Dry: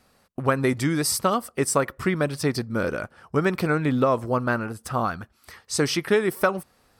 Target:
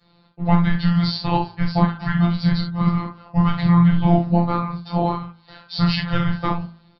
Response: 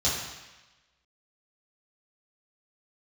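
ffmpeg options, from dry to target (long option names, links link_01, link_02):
-filter_complex "[0:a]aresample=11025,aresample=44100,afreqshift=-330,asplit=2[link_01][link_02];[link_02]asoftclip=type=tanh:threshold=-15.5dB,volume=-10.5dB[link_03];[link_01][link_03]amix=inputs=2:normalize=0[link_04];[1:a]atrim=start_sample=2205,atrim=end_sample=3969[link_05];[link_04][link_05]afir=irnorm=-1:irlink=0,afftfilt=real='hypot(re,im)*cos(PI*b)':imag='0':win_size=1024:overlap=0.75,bandreject=frequency=55.43:width_type=h:width=4,bandreject=frequency=110.86:width_type=h:width=4,bandreject=frequency=166.29:width_type=h:width=4,bandreject=frequency=221.72:width_type=h:width=4,bandreject=frequency=277.15:width_type=h:width=4,bandreject=frequency=332.58:width_type=h:width=4,bandreject=frequency=388.01:width_type=h:width=4,bandreject=frequency=443.44:width_type=h:width=4,bandreject=frequency=498.87:width_type=h:width=4,bandreject=frequency=554.3:width_type=h:width=4,bandreject=frequency=609.73:width_type=h:width=4,bandreject=frequency=665.16:width_type=h:width=4,bandreject=frequency=720.59:width_type=h:width=4,bandreject=frequency=776.02:width_type=h:width=4,bandreject=frequency=831.45:width_type=h:width=4,bandreject=frequency=886.88:width_type=h:width=4,bandreject=frequency=942.31:width_type=h:width=4,bandreject=frequency=997.74:width_type=h:width=4,bandreject=frequency=1053.17:width_type=h:width=4,bandreject=frequency=1108.6:width_type=h:width=4,bandreject=frequency=1164.03:width_type=h:width=4,bandreject=frequency=1219.46:width_type=h:width=4,bandreject=frequency=1274.89:width_type=h:width=4,bandreject=frequency=1330.32:width_type=h:width=4,bandreject=frequency=1385.75:width_type=h:width=4,bandreject=frequency=1441.18:width_type=h:width=4,bandreject=frequency=1496.61:width_type=h:width=4,bandreject=frequency=1552.04:width_type=h:width=4,bandreject=frequency=1607.47:width_type=h:width=4,volume=-5dB"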